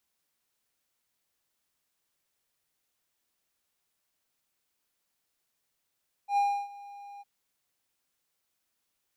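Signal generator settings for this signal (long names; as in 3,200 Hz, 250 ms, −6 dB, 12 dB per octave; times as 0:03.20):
note with an ADSR envelope triangle 808 Hz, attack 92 ms, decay 306 ms, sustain −21.5 dB, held 0.93 s, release 28 ms −19.5 dBFS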